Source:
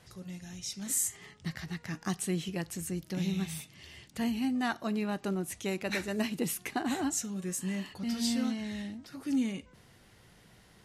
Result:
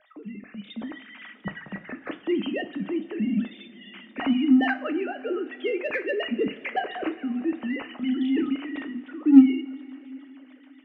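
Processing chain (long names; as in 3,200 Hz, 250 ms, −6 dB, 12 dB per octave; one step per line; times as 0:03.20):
three sine waves on the formant tracks
in parallel at −8 dB: soft clipping −28.5 dBFS, distortion −5 dB
on the sum: rotating-speaker cabinet horn 0.65 Hz, later 7 Hz, at 0:04.20
coupled-rooms reverb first 0.34 s, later 4.4 s, from −19 dB, DRR 7 dB
level +7.5 dB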